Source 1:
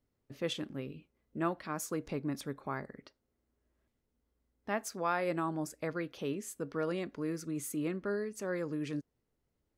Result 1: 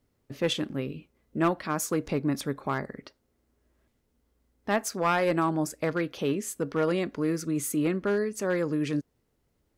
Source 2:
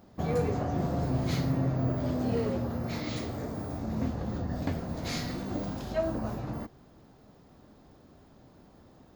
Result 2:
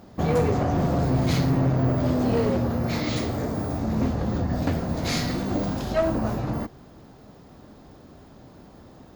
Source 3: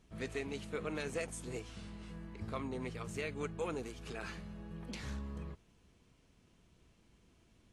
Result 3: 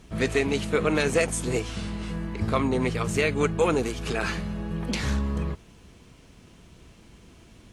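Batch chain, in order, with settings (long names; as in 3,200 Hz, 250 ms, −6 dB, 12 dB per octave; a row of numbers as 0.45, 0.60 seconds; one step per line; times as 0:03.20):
asymmetric clip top −29 dBFS
normalise the peak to −12 dBFS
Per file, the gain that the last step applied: +8.5, +8.5, +16.0 decibels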